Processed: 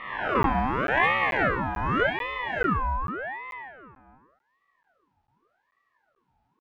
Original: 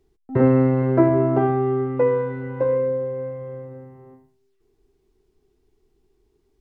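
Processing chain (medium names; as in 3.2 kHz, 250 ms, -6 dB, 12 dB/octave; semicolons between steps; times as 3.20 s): reverse spectral sustain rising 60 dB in 1.31 s; steep high-pass 190 Hz 72 dB/octave; level-controlled noise filter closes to 1.7 kHz, open at -15.5 dBFS; tilt EQ +3.5 dB/octave; 0.80–1.48 s: transient shaper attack -11 dB, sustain +9 dB; on a send at -9 dB: reverberation RT60 0.45 s, pre-delay 77 ms; on the sum: crackling interface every 0.44 s, samples 512, zero, from 0.43 s; ring modulator with a swept carrier 1 kHz, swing 55%, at 0.86 Hz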